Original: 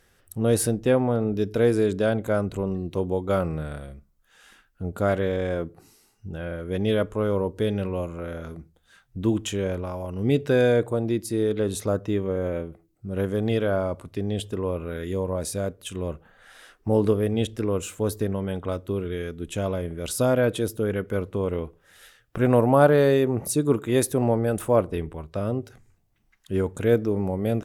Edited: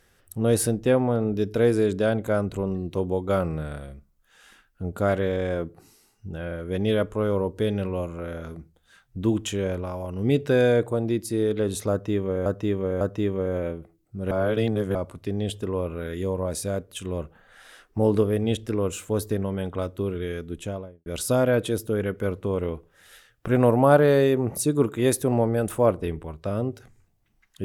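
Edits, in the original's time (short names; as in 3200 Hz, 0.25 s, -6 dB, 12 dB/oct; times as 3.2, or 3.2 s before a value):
11.91–12.46 loop, 3 plays
13.21–13.85 reverse
19.36–19.96 studio fade out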